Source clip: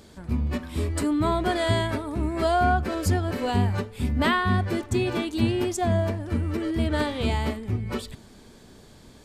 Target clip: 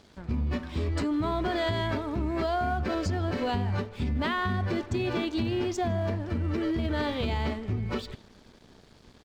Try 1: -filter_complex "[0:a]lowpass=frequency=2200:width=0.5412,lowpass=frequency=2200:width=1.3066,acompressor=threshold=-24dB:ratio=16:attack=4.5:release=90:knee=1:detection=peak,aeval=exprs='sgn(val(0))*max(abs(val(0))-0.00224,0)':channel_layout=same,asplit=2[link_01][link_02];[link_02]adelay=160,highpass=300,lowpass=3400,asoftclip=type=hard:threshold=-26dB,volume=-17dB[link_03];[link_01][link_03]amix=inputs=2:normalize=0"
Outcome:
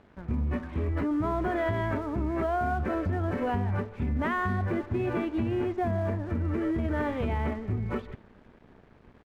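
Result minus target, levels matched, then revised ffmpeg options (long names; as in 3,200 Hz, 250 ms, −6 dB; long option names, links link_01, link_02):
8,000 Hz band −13.0 dB
-filter_complex "[0:a]lowpass=frequency=5900:width=0.5412,lowpass=frequency=5900:width=1.3066,acompressor=threshold=-24dB:ratio=16:attack=4.5:release=90:knee=1:detection=peak,aeval=exprs='sgn(val(0))*max(abs(val(0))-0.00224,0)':channel_layout=same,asplit=2[link_01][link_02];[link_02]adelay=160,highpass=300,lowpass=3400,asoftclip=type=hard:threshold=-26dB,volume=-17dB[link_03];[link_01][link_03]amix=inputs=2:normalize=0"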